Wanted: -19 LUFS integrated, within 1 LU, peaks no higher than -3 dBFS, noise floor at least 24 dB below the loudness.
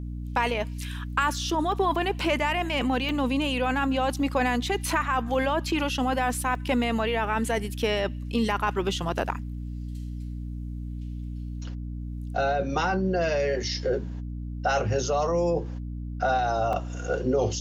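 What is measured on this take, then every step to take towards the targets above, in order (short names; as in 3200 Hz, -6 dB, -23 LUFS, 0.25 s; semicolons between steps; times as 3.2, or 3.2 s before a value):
dropouts 4; longest dropout 1.6 ms; hum 60 Hz; harmonics up to 300 Hz; hum level -31 dBFS; loudness -27.5 LUFS; peak -9.0 dBFS; loudness target -19.0 LUFS
-> interpolate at 1.72/3.09/6.55/16.73, 1.6 ms; notches 60/120/180/240/300 Hz; gain +8.5 dB; limiter -3 dBFS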